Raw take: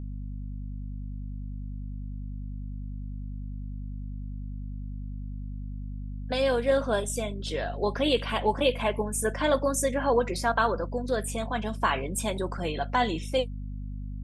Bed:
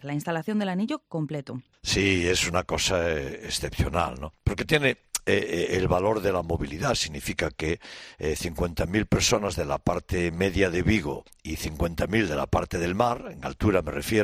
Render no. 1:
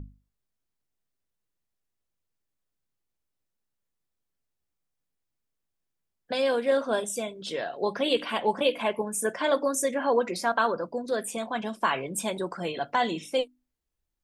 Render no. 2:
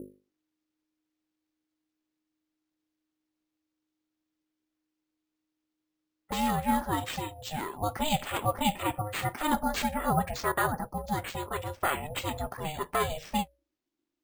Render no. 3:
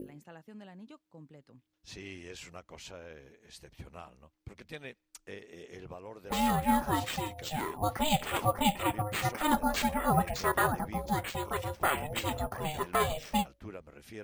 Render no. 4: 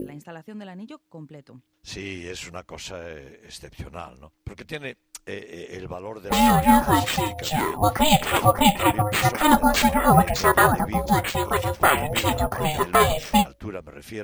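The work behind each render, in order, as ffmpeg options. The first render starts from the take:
-af "bandreject=f=50:t=h:w=6,bandreject=f=100:t=h:w=6,bandreject=f=150:t=h:w=6,bandreject=f=200:t=h:w=6,bandreject=f=250:t=h:w=6,bandreject=f=300:t=h:w=6"
-af "aeval=exprs='val(0)*sin(2*PI*310*n/s)':c=same,acrusher=samples=4:mix=1:aa=0.000001"
-filter_complex "[1:a]volume=-22.5dB[a];[0:a][a]amix=inputs=2:normalize=0"
-af "volume=11dB,alimiter=limit=-2dB:level=0:latency=1"

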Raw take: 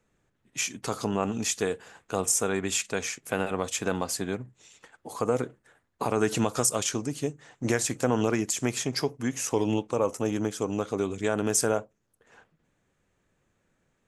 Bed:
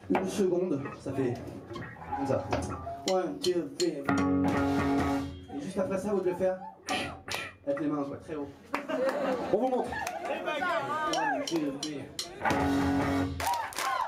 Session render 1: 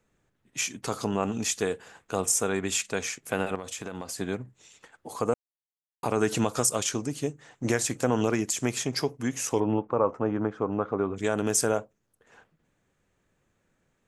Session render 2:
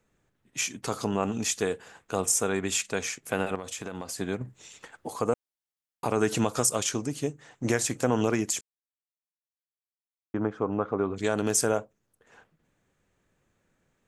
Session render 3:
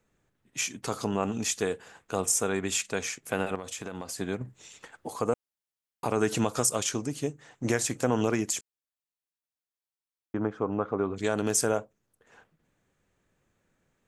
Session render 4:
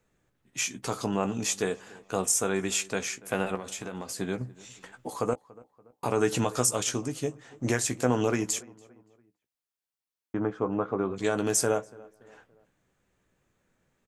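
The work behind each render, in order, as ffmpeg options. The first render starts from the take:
-filter_complex "[0:a]asettb=1/sr,asplit=3[a][b][c];[a]atrim=end=3.554[d];[b]atrim=start=3.55:end=4.18,asetpts=PTS-STARTPTS,afade=t=in:d=0.004:c=qsin,afade=t=out:st=0.626:d=0.004:c=qsin,acompressor=threshold=-32dB:ratio=6:attack=3.2:release=140:knee=1:detection=peak[e];[c]atrim=start=4.176[f];[d][e]acrossfade=d=0.004:c1=hsin:c2=qsin[g];[g][f]acrossfade=d=0.004:c1=qsin:c2=hsin,asplit=3[h][i][j];[h]afade=t=out:st=9.59:d=0.02[k];[i]lowpass=f=1.3k:t=q:w=1.7,afade=t=in:st=9.59:d=0.02,afade=t=out:st=11.16:d=0.02[l];[j]afade=t=in:st=11.16:d=0.02[m];[k][l][m]amix=inputs=3:normalize=0,asplit=3[n][o][p];[n]atrim=end=5.34,asetpts=PTS-STARTPTS,afade=t=out:st=5.336:d=0.004:c=hsin[q];[o]atrim=start=5.34:end=6.03,asetpts=PTS-STARTPTS,volume=0[r];[p]atrim=start=6.03,asetpts=PTS-STARTPTS,afade=t=in:d=0.004:c=hsin[s];[q][r][s]concat=n=3:v=0:a=1"
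-filter_complex "[0:a]asettb=1/sr,asplit=3[a][b][c];[a]atrim=end=11.034[d];[b]atrim=start=11.03:end=11.53,asetpts=PTS-STARTPTS,afade=t=in:d=0.004:c=qsin,afade=t=out:st=0.496:d=0.004:c=qsin,equalizer=f=4.3k:t=o:w=0.22:g=14[e];[c]atrim=start=11.526[f];[d][e]acrossfade=d=0.004:c1=hsin:c2=qsin[g];[g][f]acrossfade=d=0.004:c1=qsin:c2=hsin,asplit=5[h][i][j][k][l];[h]atrim=end=4.412[m];[i]atrim=start=4.408:end=5.102,asetpts=PTS-STARTPTS,volume=5.5dB[n];[j]atrim=start=5.098:end=8.61,asetpts=PTS-STARTPTS,afade=t=out:st=3.508:d=0.004:c=hsin[o];[k]atrim=start=8.61:end=10.34,asetpts=PTS-STARTPTS,volume=0[p];[l]atrim=start=10.34,asetpts=PTS-STARTPTS,afade=t=in:d=0.004:c=hsin[q];[m][n]acrossfade=d=0.004:c1=hsin:c2=hsin[r];[o][p][q]concat=n=3:v=0:a=1[s];[r][s]acrossfade=d=0.004:c1=hsin:c2=hsin"
-af "volume=-1dB"
-filter_complex "[0:a]asplit=2[a][b];[b]adelay=16,volume=-9dB[c];[a][c]amix=inputs=2:normalize=0,asplit=2[d][e];[e]adelay=286,lowpass=f=2k:p=1,volume=-22dB,asplit=2[f][g];[g]adelay=286,lowpass=f=2k:p=1,volume=0.45,asplit=2[h][i];[i]adelay=286,lowpass=f=2k:p=1,volume=0.45[j];[d][f][h][j]amix=inputs=4:normalize=0"

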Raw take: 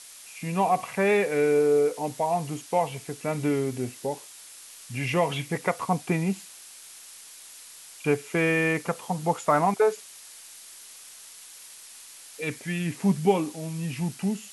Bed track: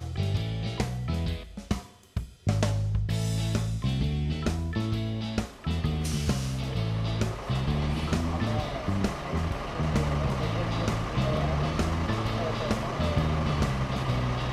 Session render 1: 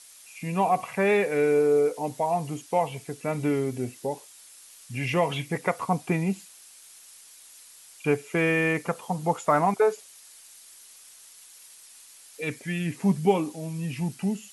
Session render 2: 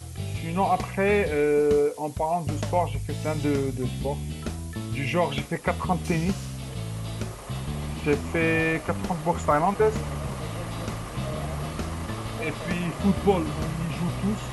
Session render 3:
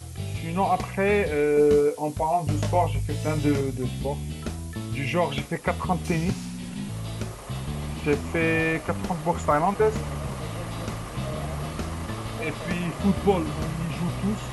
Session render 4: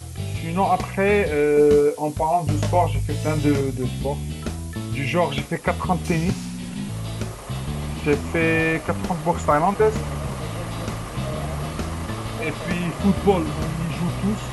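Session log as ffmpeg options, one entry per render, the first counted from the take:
-af "afftdn=nr=6:nf=-47"
-filter_complex "[1:a]volume=-4dB[a];[0:a][a]amix=inputs=2:normalize=0"
-filter_complex "[0:a]asettb=1/sr,asplit=3[a][b][c];[a]atrim=end=1.554[d];[b]atrim=start=1.55:end=3.61,asetpts=PTS-STARTPTS,afade=t=in:d=0.004:c=qsin,afade=t=out:st=2.056:d=0.004:c=qsin,asplit=2[e][f];[f]adelay=20,volume=-4dB[g];[e][g]amix=inputs=2:normalize=0,atrim=end_sample=90846[h];[c]atrim=start=3.606[i];[d][h]acrossfade=d=0.004:c1=hsin:c2=qsin[j];[j][i]acrossfade=d=0.004:c1=qsin:c2=hsin,asettb=1/sr,asplit=3[k][l][m];[k]atrim=end=6.304[n];[l]atrim=start=6.3:end=6.89,asetpts=PTS-STARTPTS,afade=t=in:d=0.004:c=qsin,afade=t=out:st=0.586:d=0.004:c=qsin,afreqshift=-310[o];[m]atrim=start=6.886[p];[n][o]acrossfade=d=0.004:c1=hsin:c2=qsin[q];[q][p]acrossfade=d=0.004:c1=qsin:c2=hsin"
-af "volume=3.5dB"

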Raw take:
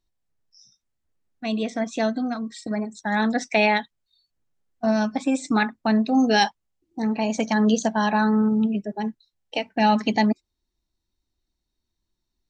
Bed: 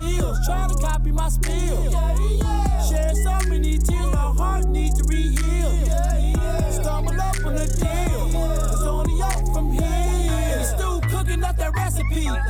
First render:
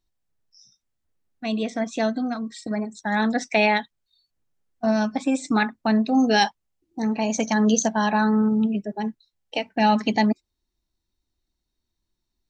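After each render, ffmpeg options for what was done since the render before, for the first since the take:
-filter_complex "[0:a]asettb=1/sr,asplit=3[a][b][c];[a]atrim=end=7.014[d];[b]atrim=start=7.01:end=7.89,asetpts=PTS-STARTPTS,afade=t=in:d=0.004:c=qsin,afade=t=out:st=0.876:d=0.004:c=qsin,equalizer=f=6.2k:w=6.5:g=10[e];[c]atrim=start=7.886[f];[d][e]acrossfade=d=0.004:c1=hsin:c2=qsin[g];[g][f]acrossfade=d=0.004:c1=qsin:c2=hsin"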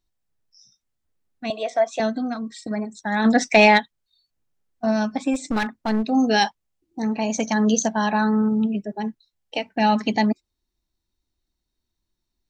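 -filter_complex "[0:a]asettb=1/sr,asplit=3[a][b][c];[a]atrim=end=1.504[d];[b]atrim=start=1.5:end=2,asetpts=PTS-STARTPTS,afade=t=in:d=0.004:c=qsin,afade=t=out:st=0.496:d=0.004:c=qsin,highpass=f=650:t=q:w=3.2[e];[c]atrim=start=1.996[f];[d][e]acrossfade=d=0.004:c1=hsin:c2=qsin[g];[g][f]acrossfade=d=0.004:c1=qsin:c2=hsin,asplit=3[h][i][j];[h]afade=t=out:st=3.24:d=0.02[k];[i]acontrast=81,afade=t=in:st=3.24:d=0.02,afade=t=out:st=3.78:d=0.02[l];[j]afade=t=in:st=3.78:d=0.02[m];[k][l][m]amix=inputs=3:normalize=0,asplit=3[n][o][p];[n]afade=t=out:st=5.33:d=0.02[q];[o]aeval=exprs='clip(val(0),-1,0.0596)':c=same,afade=t=in:st=5.33:d=0.02,afade=t=out:st=6.03:d=0.02[r];[p]afade=t=in:st=6.03:d=0.02[s];[q][r][s]amix=inputs=3:normalize=0"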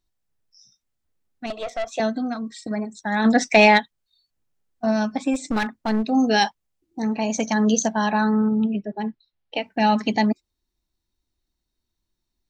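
-filter_complex "[0:a]asettb=1/sr,asplit=3[a][b][c];[a]atrim=end=1.464[d];[b]atrim=start=1.46:end=1.92,asetpts=PTS-STARTPTS,afade=t=in:d=0.004:c=qsin,afade=t=out:st=0.456:d=0.004:c=qsin,aeval=exprs='(tanh(14.1*val(0)+0.5)-tanh(0.5))/14.1':c=same[e];[c]atrim=start=1.916[f];[d][e]acrossfade=d=0.004:c1=hsin:c2=qsin[g];[g][f]acrossfade=d=0.004:c1=qsin:c2=hsin,asettb=1/sr,asplit=3[h][i][j];[h]atrim=end=8.344[k];[i]atrim=start=8.34:end=9.64,asetpts=PTS-STARTPTS,afade=t=in:d=0.004:c=qsin,afade=t=out:st=1.296:d=0.004:c=qsin,lowpass=f=4.3k:w=0.5412,lowpass=f=4.3k:w=1.3066[l];[j]atrim=start=9.636[m];[k][l]acrossfade=d=0.004:c1=hsin:c2=qsin[n];[n][m]acrossfade=d=0.004:c1=qsin:c2=hsin"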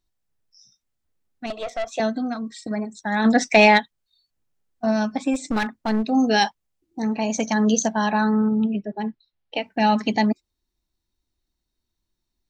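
-af anull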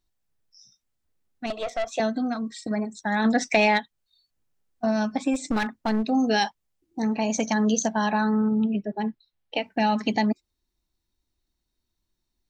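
-af "acompressor=threshold=-21dB:ratio=2"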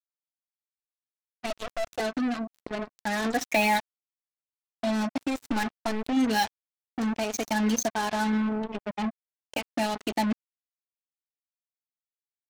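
-af "flanger=delay=2.4:depth=1.5:regen=14:speed=1.5:shape=triangular,acrusher=bits=4:mix=0:aa=0.5"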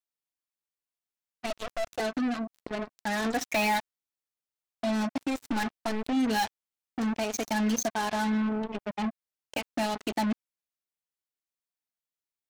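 -af "asoftclip=type=tanh:threshold=-20dB"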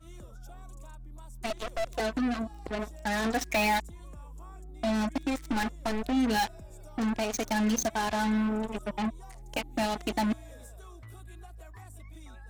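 -filter_complex "[1:a]volume=-26dB[a];[0:a][a]amix=inputs=2:normalize=0"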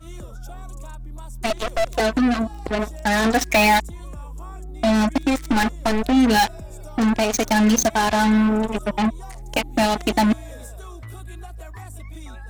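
-af "volume=10.5dB"

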